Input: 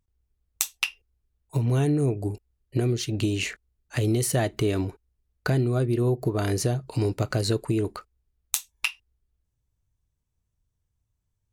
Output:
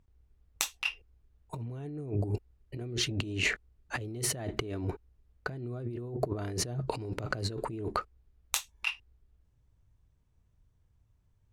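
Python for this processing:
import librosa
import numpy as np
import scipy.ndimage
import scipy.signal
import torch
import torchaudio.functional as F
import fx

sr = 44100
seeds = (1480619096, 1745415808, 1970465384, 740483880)

y = fx.lowpass(x, sr, hz=2000.0, slope=6)
y = fx.over_compress(y, sr, threshold_db=-35.0, ratio=-1.0)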